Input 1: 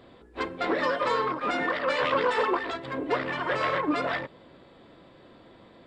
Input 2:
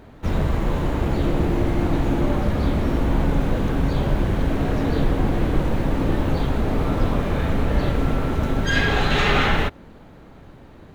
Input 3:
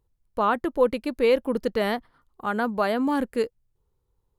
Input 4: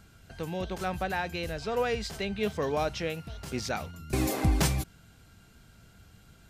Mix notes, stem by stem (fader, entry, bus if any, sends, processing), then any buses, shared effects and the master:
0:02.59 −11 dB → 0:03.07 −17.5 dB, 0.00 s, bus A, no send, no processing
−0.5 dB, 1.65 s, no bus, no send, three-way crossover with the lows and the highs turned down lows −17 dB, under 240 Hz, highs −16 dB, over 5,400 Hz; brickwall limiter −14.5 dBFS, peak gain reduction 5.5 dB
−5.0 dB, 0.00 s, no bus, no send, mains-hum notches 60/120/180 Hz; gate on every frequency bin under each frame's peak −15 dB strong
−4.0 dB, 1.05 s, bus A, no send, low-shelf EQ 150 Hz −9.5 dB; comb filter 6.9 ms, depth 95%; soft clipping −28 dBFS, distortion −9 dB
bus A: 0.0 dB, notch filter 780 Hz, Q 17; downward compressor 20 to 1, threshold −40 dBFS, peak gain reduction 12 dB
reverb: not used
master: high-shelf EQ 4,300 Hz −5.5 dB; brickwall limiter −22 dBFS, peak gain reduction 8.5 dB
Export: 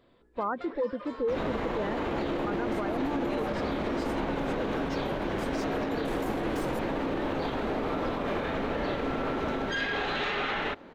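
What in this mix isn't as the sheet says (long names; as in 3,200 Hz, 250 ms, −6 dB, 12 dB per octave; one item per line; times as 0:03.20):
stem 2: entry 1.65 s → 1.05 s
stem 4: entry 1.05 s → 1.95 s
master: missing high-shelf EQ 4,300 Hz −5.5 dB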